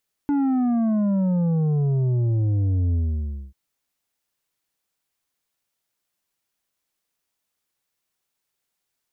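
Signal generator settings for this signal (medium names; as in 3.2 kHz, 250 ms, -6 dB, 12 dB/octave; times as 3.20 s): sub drop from 290 Hz, over 3.24 s, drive 7 dB, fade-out 0.59 s, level -19 dB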